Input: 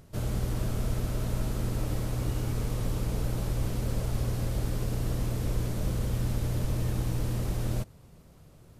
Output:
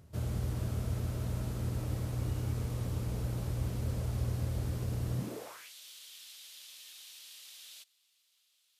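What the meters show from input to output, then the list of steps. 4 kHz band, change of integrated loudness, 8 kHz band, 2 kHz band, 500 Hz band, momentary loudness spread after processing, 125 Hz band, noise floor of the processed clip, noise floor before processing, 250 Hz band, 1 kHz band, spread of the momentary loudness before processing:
-4.0 dB, -4.0 dB, -6.0 dB, -7.0 dB, -7.5 dB, 13 LU, -5.0 dB, -73 dBFS, -54 dBFS, -7.0 dB, -7.5 dB, 1 LU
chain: high-pass sweep 75 Hz -> 3.4 kHz, 5.09–5.72 s; trim -6.5 dB

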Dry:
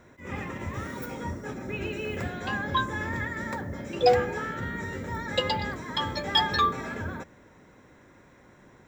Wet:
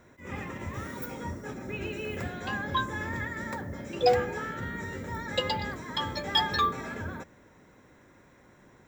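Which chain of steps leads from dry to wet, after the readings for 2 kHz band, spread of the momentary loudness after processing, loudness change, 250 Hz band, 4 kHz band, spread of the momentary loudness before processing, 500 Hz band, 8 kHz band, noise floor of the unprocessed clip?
-2.5 dB, 12 LU, -2.5 dB, -2.5 dB, -2.0 dB, 12 LU, -2.5 dB, -1.0 dB, -56 dBFS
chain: treble shelf 10 kHz +6 dB; trim -2.5 dB

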